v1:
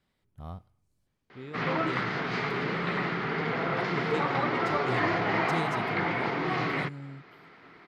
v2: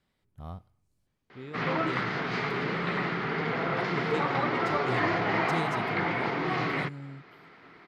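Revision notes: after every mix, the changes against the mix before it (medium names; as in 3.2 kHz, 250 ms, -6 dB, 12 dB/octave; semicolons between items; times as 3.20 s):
no change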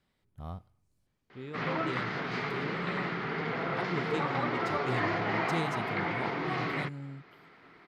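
background -3.5 dB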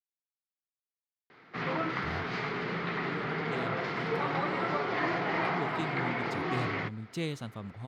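speech: entry +1.65 s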